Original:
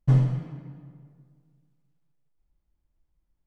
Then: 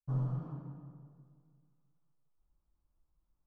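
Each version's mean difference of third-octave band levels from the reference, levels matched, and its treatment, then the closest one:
5.0 dB: fade in at the beginning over 0.51 s
high shelf with overshoot 1,600 Hz −9 dB, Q 3
notch filter 2,000 Hz, Q 11
level −4 dB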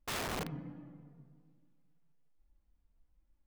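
14.0 dB: bass and treble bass 0 dB, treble −8 dB
flanger 1.2 Hz, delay 3.4 ms, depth 1.1 ms, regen −22%
wrap-around overflow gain 36 dB
level +3.5 dB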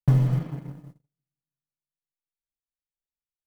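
3.0 dB: mu-law and A-law mismatch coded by A
noise gate −52 dBFS, range −34 dB
downward compressor 6 to 1, threshold −24 dBFS, peak gain reduction 9 dB
level +8 dB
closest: third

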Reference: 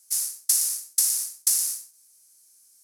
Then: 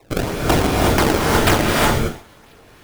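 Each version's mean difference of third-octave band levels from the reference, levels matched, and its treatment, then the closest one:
23.0 dB: in parallel at +1 dB: brickwall limiter −13.5 dBFS, peak gain reduction 9 dB
on the sum: sample-and-hold swept by an LFO 27×, swing 160% 1.9 Hz
reverb whose tail is shaped and stops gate 390 ms rising, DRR −2.5 dB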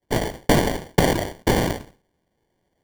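16.0 dB: downward expander −45 dBFS
parametric band 3,100 Hz +12 dB 0.69 octaves
decimation without filtering 34×
level +3.5 dB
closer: second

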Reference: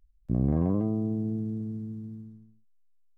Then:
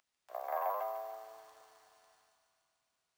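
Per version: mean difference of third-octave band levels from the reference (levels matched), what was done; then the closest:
20.5 dB: Butterworth high-pass 670 Hz 48 dB per octave
delay with a high-pass on its return 147 ms, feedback 72%, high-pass 1,500 Hz, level −8.5 dB
bad sample-rate conversion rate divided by 3×, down none, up hold
level +9.5 dB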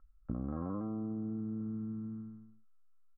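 3.5 dB: comb filter 3.7 ms, depth 42%
downward compressor 6 to 1, threshold −33 dBFS, peak gain reduction 12 dB
low-pass with resonance 1,300 Hz, resonance Q 14
level −2 dB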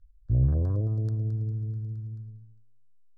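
4.5 dB: auto-filter low-pass square 4.6 Hz 550–1,500 Hz
drawn EQ curve 130 Hz 0 dB, 180 Hz −24 dB, 270 Hz −18 dB, 540 Hz −16 dB, 780 Hz −21 dB, 1,600 Hz −14 dB, 2,400 Hz −27 dB, 4,500 Hz +9 dB
on a send: feedback echo with a high-pass in the loop 403 ms, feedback 29%, high-pass 1,100 Hz, level −16 dB
on the sum: level +7 dB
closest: second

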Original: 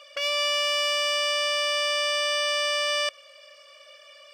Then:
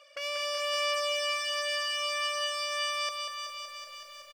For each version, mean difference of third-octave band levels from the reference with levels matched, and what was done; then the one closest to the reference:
3.5 dB: parametric band 3,400 Hz −5.5 dB 0.53 octaves
repeating echo 406 ms, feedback 29%, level −13 dB
feedback echo at a low word length 188 ms, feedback 80%, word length 9 bits, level −7 dB
level −6.5 dB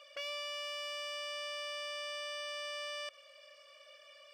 2.0 dB: parametric band 6,800 Hz −2.5 dB 1.9 octaves
notch filter 1,300 Hz, Q 15
brickwall limiter −25 dBFS, peak gain reduction 8.5 dB
level −7 dB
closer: second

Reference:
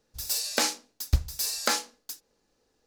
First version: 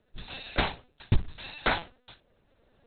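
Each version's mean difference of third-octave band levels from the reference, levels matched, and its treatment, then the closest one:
15.0 dB: camcorder AGC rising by 5.9 dB per second
linear-prediction vocoder at 8 kHz pitch kept
level +2.5 dB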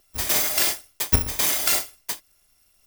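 9.0 dB: samples in bit-reversed order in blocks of 256 samples
boost into a limiter +18.5 dB
level −8.5 dB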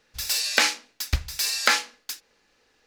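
4.0 dB: parametric band 2,200 Hz +14.5 dB 2.1 octaves
in parallel at 0 dB: downward compressor, threshold −27 dBFS, peak gain reduction 14 dB
on the sum: level −4.5 dB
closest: third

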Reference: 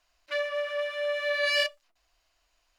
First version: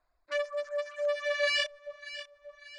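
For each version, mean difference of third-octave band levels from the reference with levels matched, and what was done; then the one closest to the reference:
3.5 dB: adaptive Wiener filter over 15 samples
Butterworth low-pass 9,400 Hz 96 dB per octave
delay that swaps between a low-pass and a high-pass 296 ms, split 1,000 Hz, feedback 65%, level −9 dB
reverb reduction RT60 1.3 s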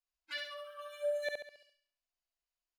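7.5 dB: noise reduction from a noise print of the clip's start 26 dB
high-shelf EQ 3,700 Hz +6 dB
gate with flip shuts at −23 dBFS, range −42 dB
repeating echo 68 ms, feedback 44%, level −3.5 dB
level −3 dB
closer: first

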